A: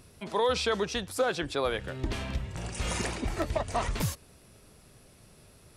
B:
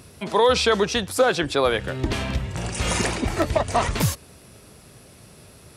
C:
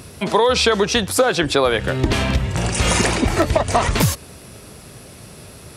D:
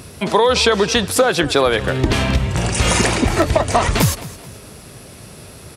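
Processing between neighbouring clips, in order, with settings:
high-pass 58 Hz; trim +9 dB
compression, threshold -20 dBFS, peak gain reduction 7.5 dB; trim +8 dB
feedback delay 215 ms, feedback 35%, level -17 dB; trim +1.5 dB

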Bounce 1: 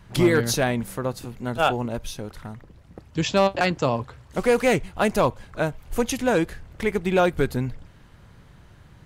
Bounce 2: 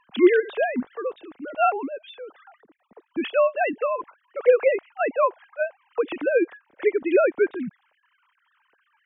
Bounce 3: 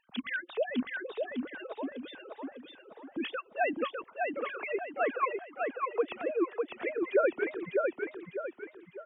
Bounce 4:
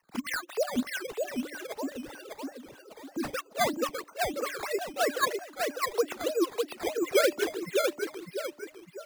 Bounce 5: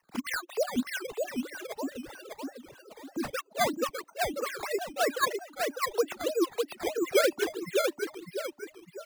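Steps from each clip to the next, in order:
formants replaced by sine waves
harmonic-percussive separation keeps percussive; on a send: feedback delay 602 ms, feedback 40%, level -3.5 dB; on the sum: trim -5.5 dB
de-hum 295.2 Hz, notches 2; decimation with a swept rate 11×, swing 100% 3.1 Hz; trim +2.5 dB
reverb removal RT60 0.54 s

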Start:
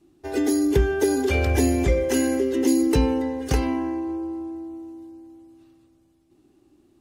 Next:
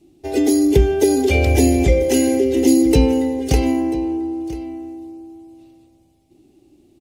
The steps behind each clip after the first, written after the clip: high-order bell 1.3 kHz -11 dB 1.1 oct; delay 989 ms -18 dB; trim +6 dB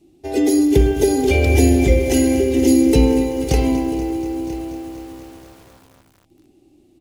spring tank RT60 1.2 s, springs 50/54 ms, chirp 70 ms, DRR 7.5 dB; bit-crushed delay 240 ms, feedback 80%, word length 6-bit, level -14 dB; trim -1 dB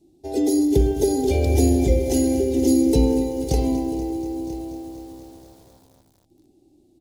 high-order bell 1.8 kHz -10.5 dB; trim -4 dB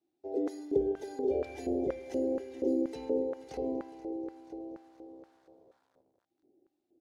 LFO band-pass square 2.1 Hz 490–1500 Hz; trim -4 dB

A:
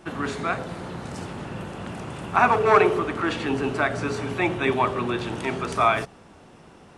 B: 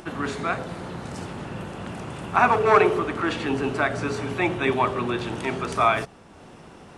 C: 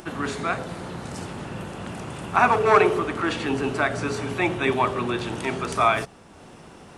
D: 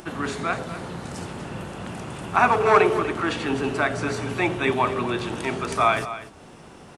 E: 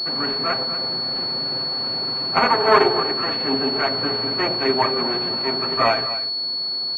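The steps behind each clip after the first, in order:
upward compressor, threshold -39 dBFS
treble shelf 5.8 kHz +5.5 dB
delay 244 ms -13.5 dB
comb filter that takes the minimum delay 7.6 ms; high-pass 200 Hz 12 dB/octave; class-D stage that switches slowly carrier 4.4 kHz; trim +4 dB

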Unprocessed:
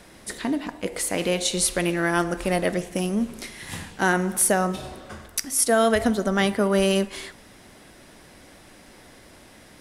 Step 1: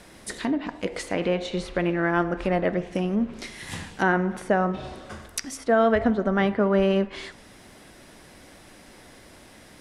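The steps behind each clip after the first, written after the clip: low-pass that closes with the level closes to 2 kHz, closed at -20.5 dBFS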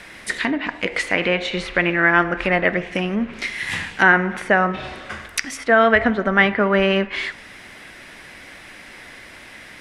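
peaking EQ 2.1 kHz +14 dB 1.6 oct; trim +1.5 dB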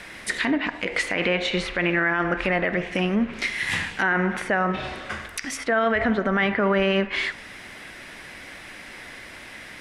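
peak limiter -12.5 dBFS, peak gain reduction 11 dB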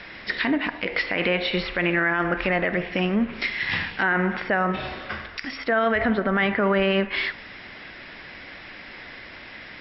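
brick-wall FIR low-pass 5.6 kHz

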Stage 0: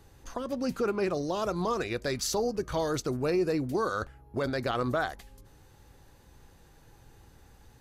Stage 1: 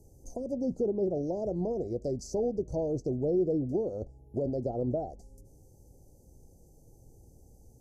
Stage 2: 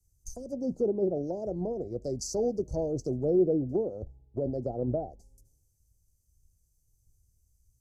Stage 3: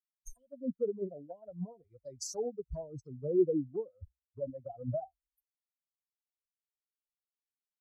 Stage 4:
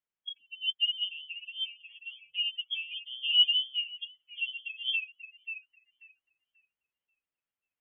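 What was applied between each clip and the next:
low-pass that closes with the level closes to 2.2 kHz, closed at -25.5 dBFS; inverse Chebyshev band-stop 1.1–3.7 kHz, stop band 40 dB
three bands expanded up and down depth 100%
expander on every frequency bin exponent 3
repeats whose band climbs or falls 537 ms, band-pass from 940 Hz, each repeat 0.7 oct, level -3 dB; frequency inversion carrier 3.3 kHz; trim +3.5 dB

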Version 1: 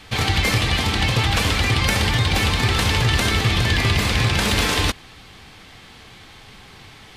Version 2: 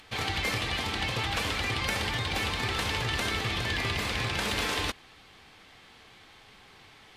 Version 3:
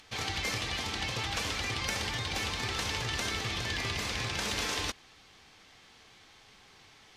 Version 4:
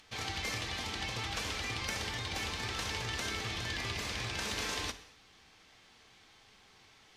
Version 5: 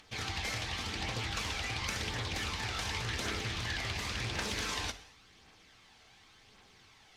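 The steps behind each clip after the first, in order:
tone controls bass -7 dB, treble -3 dB; upward compressor, threshold -45 dBFS; trim -8.5 dB
peaking EQ 6 kHz +8 dB 0.76 oct; trim -4.5 dB
gated-style reverb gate 270 ms falling, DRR 10.5 dB; trim -4 dB
phaser 0.91 Hz, delay 1.5 ms, feedback 33%; loudspeaker Doppler distortion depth 0.27 ms

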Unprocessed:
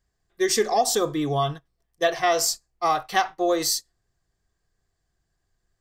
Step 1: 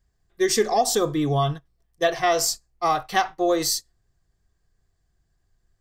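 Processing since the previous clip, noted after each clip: bass shelf 190 Hz +7.5 dB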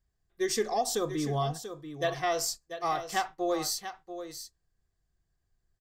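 delay 688 ms -10.5 dB; trim -8.5 dB

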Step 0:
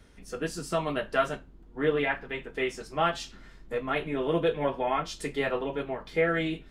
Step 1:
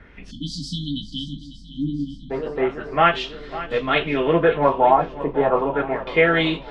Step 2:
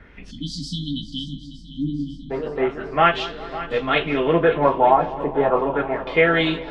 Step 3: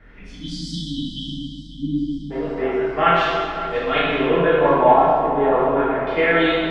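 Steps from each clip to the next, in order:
LFO low-pass sine 0.34 Hz 770–4300 Hz; shuffle delay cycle 916 ms, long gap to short 1.5:1, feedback 40%, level -15 dB; spectral selection erased 0.31–2.30 s, 320–3000 Hz; trim +8 dB
filtered feedback delay 203 ms, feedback 69%, low-pass 1.8 kHz, level -16.5 dB
plate-style reverb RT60 1.8 s, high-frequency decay 0.7×, DRR -7 dB; trim -6 dB

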